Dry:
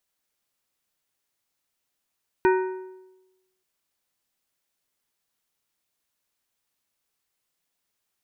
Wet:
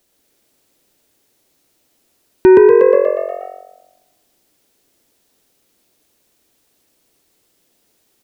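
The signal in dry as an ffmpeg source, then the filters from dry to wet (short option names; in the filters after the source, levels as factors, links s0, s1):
-f lavfi -i "aevalsrc='0.178*pow(10,-3*t/1.05)*sin(2*PI*374*t)+0.1*pow(10,-3*t/0.798)*sin(2*PI*935*t)+0.0562*pow(10,-3*t/0.693)*sin(2*PI*1496*t)+0.0316*pow(10,-3*t/0.648)*sin(2*PI*1870*t)+0.0178*pow(10,-3*t/0.599)*sin(2*PI*2431*t)':d=1.18:s=44100"
-filter_complex "[0:a]firequalizer=gain_entry='entry(150,0);entry(280,7);entry(1000,-7);entry(3800,-4)':delay=0.05:min_phase=1,asplit=2[s0][s1];[s1]asplit=8[s2][s3][s4][s5][s6][s7][s8][s9];[s2]adelay=120,afreqshift=46,volume=0.631[s10];[s3]adelay=240,afreqshift=92,volume=0.367[s11];[s4]adelay=360,afreqshift=138,volume=0.211[s12];[s5]adelay=480,afreqshift=184,volume=0.123[s13];[s6]adelay=600,afreqshift=230,volume=0.0716[s14];[s7]adelay=720,afreqshift=276,volume=0.0412[s15];[s8]adelay=840,afreqshift=322,volume=0.024[s16];[s9]adelay=960,afreqshift=368,volume=0.014[s17];[s10][s11][s12][s13][s14][s15][s16][s17]amix=inputs=8:normalize=0[s18];[s0][s18]amix=inputs=2:normalize=0,alimiter=level_in=8.91:limit=0.891:release=50:level=0:latency=1"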